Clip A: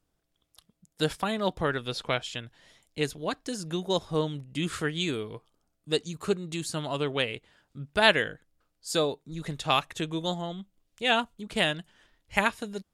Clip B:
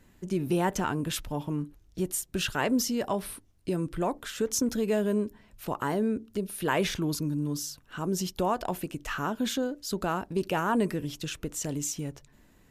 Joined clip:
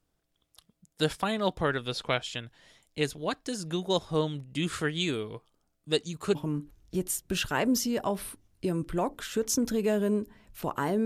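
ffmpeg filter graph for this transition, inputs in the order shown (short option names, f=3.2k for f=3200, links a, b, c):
-filter_complex "[0:a]apad=whole_dur=11.05,atrim=end=11.05,atrim=end=6.352[a];[1:a]atrim=start=1.388:end=6.09[b];[a][b]acrossfade=d=0.004:c1=hsin:c2=hsin"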